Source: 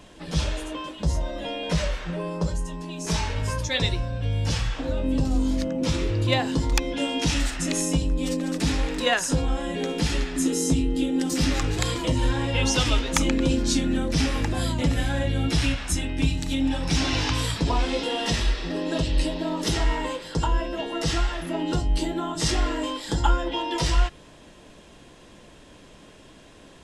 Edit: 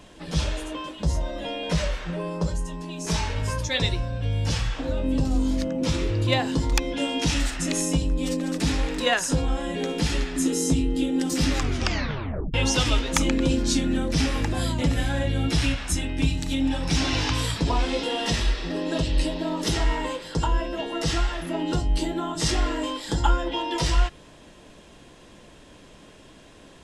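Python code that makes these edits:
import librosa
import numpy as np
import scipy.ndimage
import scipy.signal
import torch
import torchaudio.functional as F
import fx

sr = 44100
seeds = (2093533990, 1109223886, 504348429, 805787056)

y = fx.edit(x, sr, fx.tape_stop(start_s=11.58, length_s=0.96), tone=tone)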